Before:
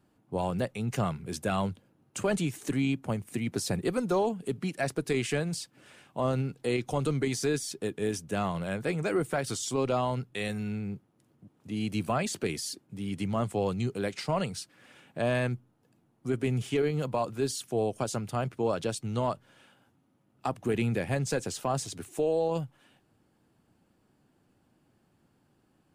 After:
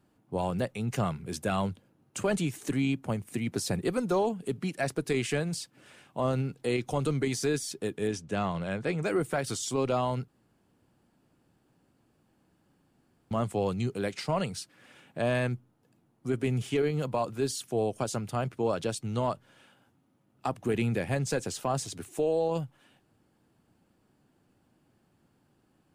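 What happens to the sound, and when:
0:08.07–0:09.02: low-pass filter 6,700 Hz
0:10.28–0:13.31: fill with room tone

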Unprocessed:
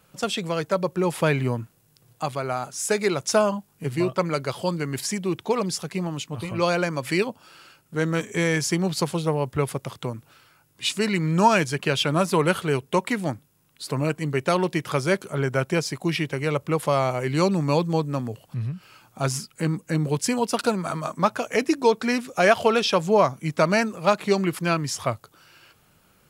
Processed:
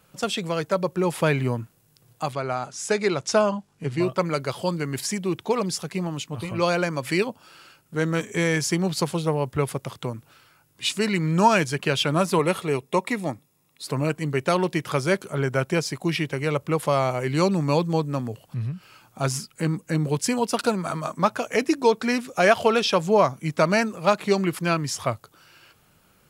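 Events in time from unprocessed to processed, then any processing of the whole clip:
0:02.33–0:04.02: low-pass filter 7,000 Hz
0:12.39–0:13.84: notch comb filter 1,500 Hz

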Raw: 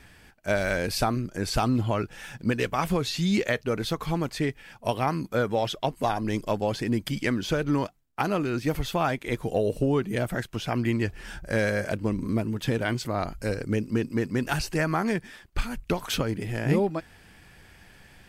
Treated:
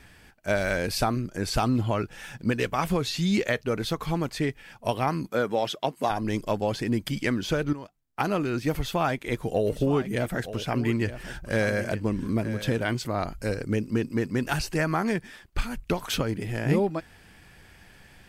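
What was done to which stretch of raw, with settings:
0:05.30–0:06.10: high-pass filter 170 Hz
0:07.73–0:08.21: fade in quadratic, from −14 dB
0:08.73–0:12.79: single-tap delay 920 ms −13 dB

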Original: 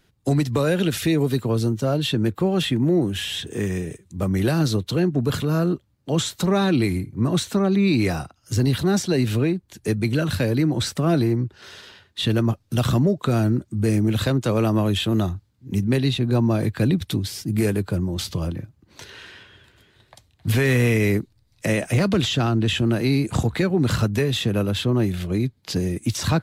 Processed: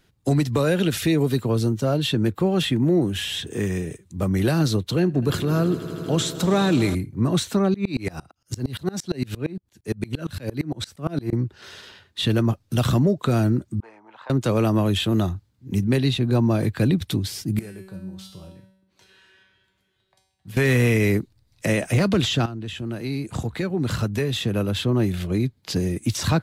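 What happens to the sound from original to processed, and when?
0:04.98–0:06.95: echo that builds up and dies away 80 ms, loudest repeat 5, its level −18 dB
0:07.74–0:11.33: tremolo with a ramp in dB swelling 8.7 Hz, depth 27 dB
0:13.80–0:14.30: four-pole ladder band-pass 980 Hz, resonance 75%
0:17.59–0:20.57: tuned comb filter 190 Hz, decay 0.74 s, mix 90%
0:22.46–0:25.12: fade in, from −13.5 dB

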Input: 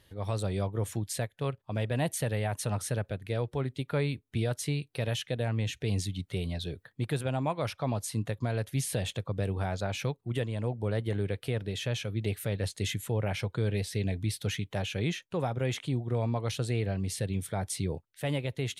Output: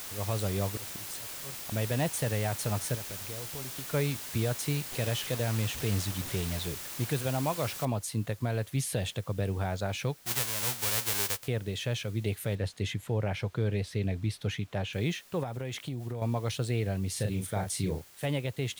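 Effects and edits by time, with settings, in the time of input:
0:00.65–0:01.72: volume swells 377 ms
0:02.95–0:03.94: downward compressor 3 to 1, threshold −41 dBFS
0:04.92–0:06.67: linear delta modulator 64 kbit/s, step −35.5 dBFS
0:07.85: noise floor change −41 dB −57 dB
0:10.25–0:11.46: spectral envelope flattened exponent 0.1
0:12.55–0:14.93: low-pass filter 3,300 Hz 6 dB per octave
0:15.43–0:16.22: downward compressor, threshold −31 dBFS
0:17.12–0:18.26: double-tracking delay 38 ms −4.5 dB

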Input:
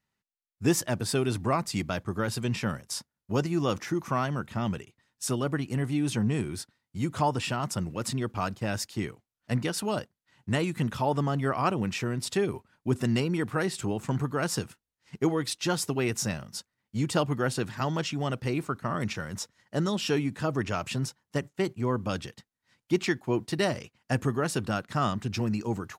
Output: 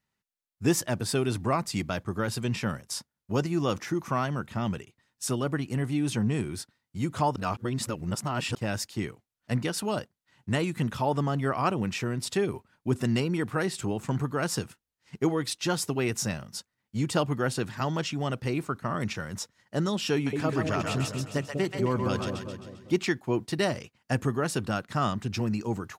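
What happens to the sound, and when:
0:07.36–0:08.55: reverse
0:20.13–0:22.95: echo with a time of its own for lows and highs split 600 Hz, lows 197 ms, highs 132 ms, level −3.5 dB

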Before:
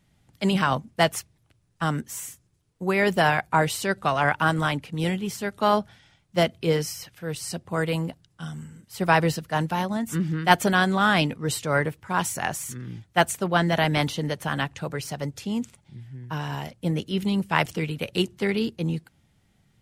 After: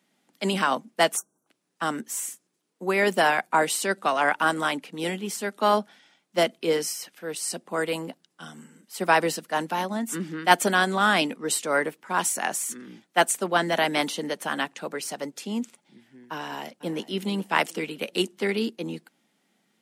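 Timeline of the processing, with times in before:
0:01.17–0:01.47: time-frequency box erased 1,600–5,600 Hz
0:16.38–0:17.20: delay throw 420 ms, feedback 30%, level −16.5 dB
whole clip: Butterworth high-pass 210 Hz 36 dB per octave; dynamic equaliser 8,800 Hz, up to +6 dB, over −48 dBFS, Q 1.4

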